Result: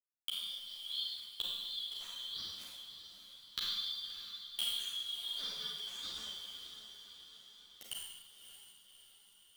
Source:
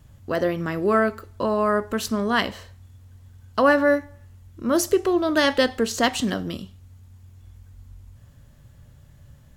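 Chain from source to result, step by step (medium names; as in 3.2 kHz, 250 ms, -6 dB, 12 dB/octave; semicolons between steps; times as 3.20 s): four frequency bands reordered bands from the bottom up 3412; low-pass 11 kHz 12 dB/octave; bass shelf 420 Hz -6.5 dB; hum notches 60/120/180/240/300/360/420/480 Hz; bit crusher 6-bit; inverted gate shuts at -25 dBFS, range -31 dB; echo that smears into a reverb 596 ms, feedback 58%, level -10 dB; Schroeder reverb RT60 1.1 s, combs from 32 ms, DRR -3 dB; three-phase chorus; trim +7.5 dB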